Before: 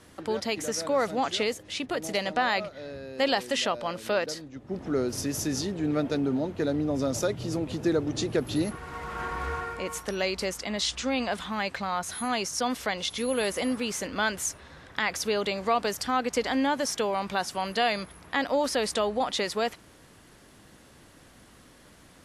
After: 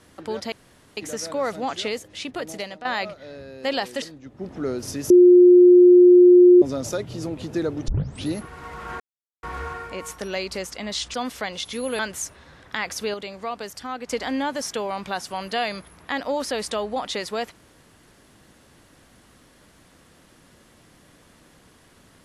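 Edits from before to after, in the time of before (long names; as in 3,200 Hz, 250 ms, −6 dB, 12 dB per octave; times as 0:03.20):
0:00.52: splice in room tone 0.45 s
0:02.00–0:02.40: fade out, to −13.5 dB
0:03.57–0:04.32: remove
0:05.40–0:06.92: beep over 357 Hz −7.5 dBFS
0:08.18: tape start 0.38 s
0:09.30: splice in silence 0.43 s
0:11.01–0:12.59: remove
0:13.44–0:14.23: remove
0:15.38–0:16.32: clip gain −5.5 dB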